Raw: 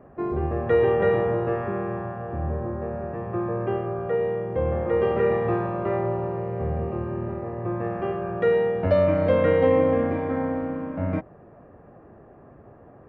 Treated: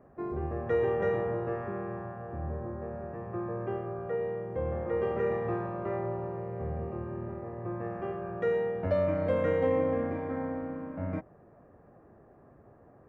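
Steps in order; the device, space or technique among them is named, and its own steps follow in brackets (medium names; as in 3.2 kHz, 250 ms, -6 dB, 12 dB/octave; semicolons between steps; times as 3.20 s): exciter from parts (in parallel at -4.5 dB: high-pass 2.3 kHz 24 dB/octave + saturation -39 dBFS, distortion -16 dB + high-pass 3.2 kHz 6 dB/octave); on the sum: trim -8 dB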